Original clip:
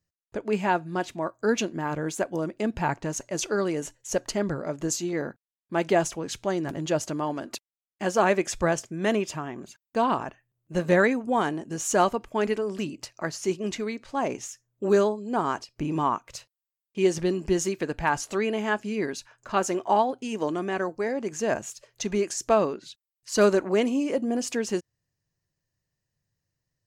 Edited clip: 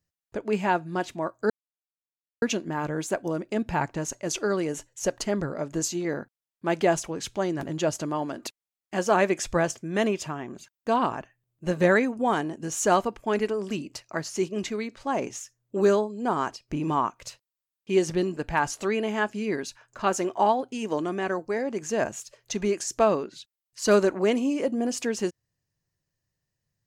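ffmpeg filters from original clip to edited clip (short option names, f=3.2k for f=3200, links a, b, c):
-filter_complex "[0:a]asplit=3[a][b][c];[a]atrim=end=1.5,asetpts=PTS-STARTPTS,afade=t=out:st=1.496:d=0.004:c=hsin,apad=pad_dur=0.92[d];[b]atrim=start=1.5:end=17.452,asetpts=PTS-STARTPTS,afade=t=in:d=0.004:c=hsin[e];[c]atrim=start=17.868[f];[d][e]concat=n=2:v=0:a=1[g];[g][f]acrossfade=d=0.004:c1=hsin:c2=hsin"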